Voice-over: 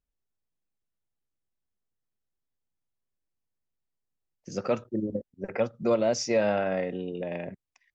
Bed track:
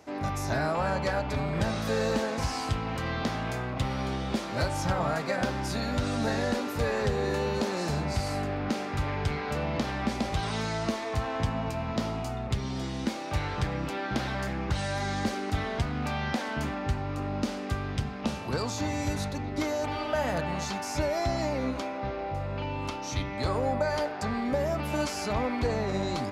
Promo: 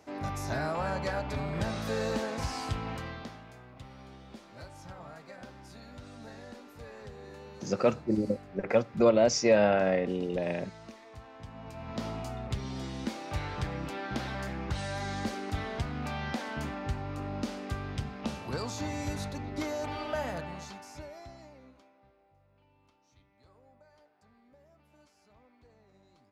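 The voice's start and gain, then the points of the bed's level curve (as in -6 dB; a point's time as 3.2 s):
3.15 s, +2.0 dB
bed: 2.91 s -4 dB
3.47 s -18.5 dB
11.4 s -18.5 dB
12.07 s -4.5 dB
20.16 s -4.5 dB
22.27 s -33.5 dB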